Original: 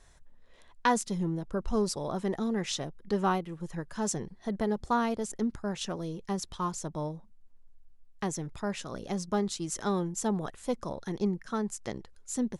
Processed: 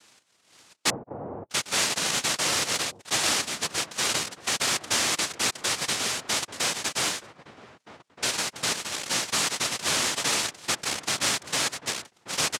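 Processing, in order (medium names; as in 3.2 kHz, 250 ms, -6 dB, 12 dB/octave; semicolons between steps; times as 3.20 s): noise-vocoded speech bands 1; in parallel at 0 dB: compressor with a negative ratio -33 dBFS, ratio -1; 0.90–1.50 s: on the sum: inverse Chebyshev low-pass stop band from 4.4 kHz, stop band 80 dB; echo from a far wall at 270 m, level -12 dB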